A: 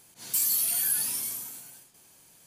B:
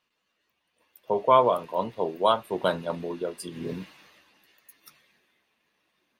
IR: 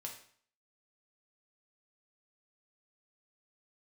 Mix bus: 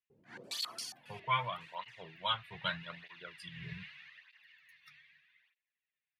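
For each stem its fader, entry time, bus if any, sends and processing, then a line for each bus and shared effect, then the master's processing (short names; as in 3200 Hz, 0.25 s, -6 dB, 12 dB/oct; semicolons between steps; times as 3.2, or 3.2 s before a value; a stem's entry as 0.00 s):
-1.0 dB, 0.10 s, no send, stepped low-pass 7.3 Hz 390–5300 Hz; auto duck -14 dB, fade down 0.25 s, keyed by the second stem
-2.5 dB, 0.00 s, no send, EQ curve 150 Hz 0 dB, 240 Hz -23 dB, 430 Hz -24 dB, 1200 Hz -5 dB, 1900 Hz +11 dB, 3800 Hz +2 dB, 6300 Hz -11 dB, 12000 Hz -20 dB; gate with hold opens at -53 dBFS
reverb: off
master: tape flanging out of phase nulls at 0.81 Hz, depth 3.9 ms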